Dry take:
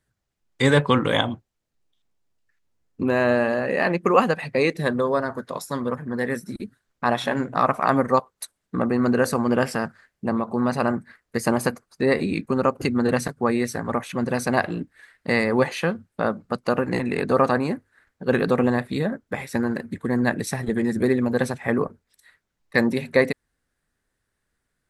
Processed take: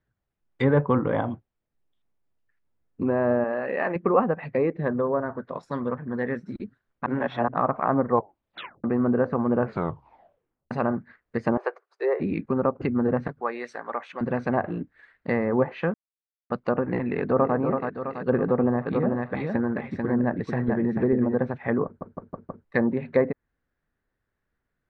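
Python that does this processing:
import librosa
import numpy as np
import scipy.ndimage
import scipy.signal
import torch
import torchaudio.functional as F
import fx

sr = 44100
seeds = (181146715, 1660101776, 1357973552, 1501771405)

y = fx.peak_eq(x, sr, hz=80.0, db=-13.0, octaves=2.8, at=(3.44, 3.96))
y = fx.lowpass(y, sr, hz=2100.0, slope=6, at=(4.7, 5.63))
y = fx.ellip_highpass(y, sr, hz=380.0, order=4, stop_db=40, at=(11.57, 12.2))
y = fx.highpass(y, sr, hz=590.0, slope=12, at=(13.4, 14.21))
y = fx.echo_throw(y, sr, start_s=17.02, length_s=0.54, ms=330, feedback_pct=55, wet_db=-6.0)
y = fx.echo_single(y, sr, ms=441, db=-4.0, at=(18.85, 21.34), fade=0.02)
y = fx.edit(y, sr, fx.reverse_span(start_s=7.06, length_s=0.42),
    fx.tape_stop(start_s=8.1, length_s=0.74),
    fx.tape_stop(start_s=9.57, length_s=1.14),
    fx.silence(start_s=15.94, length_s=0.56),
    fx.stutter_over(start_s=21.85, slice_s=0.16, count=5), tone=tone)
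y = scipy.signal.sosfilt(scipy.signal.bessel(2, 2000.0, 'lowpass', norm='mag', fs=sr, output='sos'), y)
y = fx.env_lowpass_down(y, sr, base_hz=1200.0, full_db=-17.0)
y = y * librosa.db_to_amplitude(-2.0)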